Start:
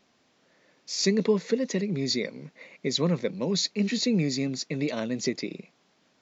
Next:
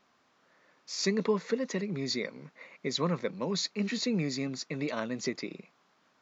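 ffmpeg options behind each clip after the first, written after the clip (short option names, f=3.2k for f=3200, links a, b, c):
-af "equalizer=f=1.2k:t=o:w=1.2:g=10.5,volume=-6dB"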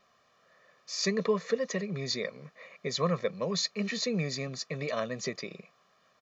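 -af "aecho=1:1:1.7:0.68"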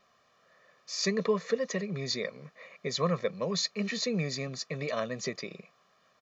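-af anull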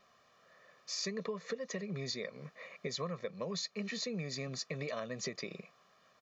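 -af "acompressor=threshold=-36dB:ratio=6"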